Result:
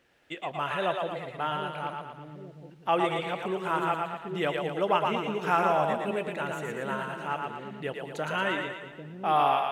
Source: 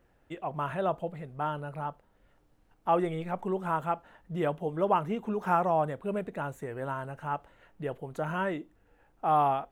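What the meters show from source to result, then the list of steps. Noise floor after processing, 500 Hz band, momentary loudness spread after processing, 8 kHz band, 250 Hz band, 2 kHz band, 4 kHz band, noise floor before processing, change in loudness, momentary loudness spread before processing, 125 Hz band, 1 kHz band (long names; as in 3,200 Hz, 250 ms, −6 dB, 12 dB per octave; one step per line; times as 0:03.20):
−51 dBFS, +1.5 dB, 13 LU, can't be measured, 0.0 dB, +8.0 dB, +13.5 dB, −67 dBFS, +2.0 dB, 12 LU, −2.0 dB, +2.0 dB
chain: meter weighting curve D
on a send: echo with a time of its own for lows and highs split 410 Hz, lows 797 ms, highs 115 ms, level −3.5 dB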